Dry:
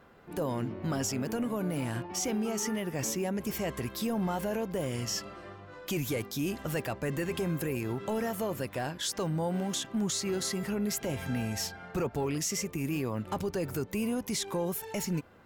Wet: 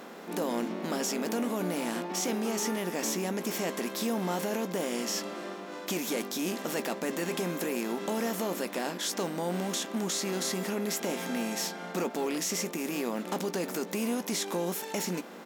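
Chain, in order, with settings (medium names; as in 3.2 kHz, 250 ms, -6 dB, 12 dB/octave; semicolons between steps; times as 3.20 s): spectral levelling over time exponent 0.6; brick-wall FIR high-pass 170 Hz; doubling 17 ms -12.5 dB; trim -2.5 dB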